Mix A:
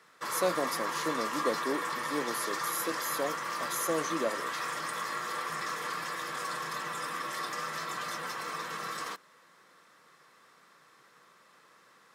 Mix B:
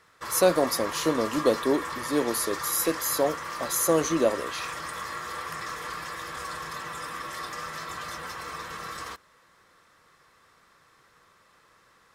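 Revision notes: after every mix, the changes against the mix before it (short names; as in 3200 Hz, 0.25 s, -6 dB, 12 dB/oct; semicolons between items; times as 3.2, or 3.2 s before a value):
speech +9.0 dB; master: remove HPF 150 Hz 24 dB/oct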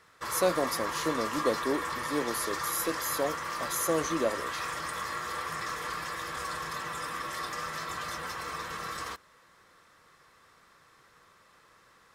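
speech -6.0 dB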